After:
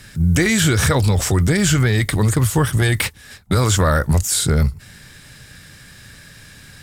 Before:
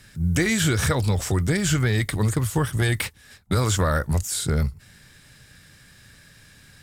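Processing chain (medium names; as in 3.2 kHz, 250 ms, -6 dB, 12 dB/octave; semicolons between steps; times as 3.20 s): peak limiter -17 dBFS, peak gain reduction 4 dB; trim +8.5 dB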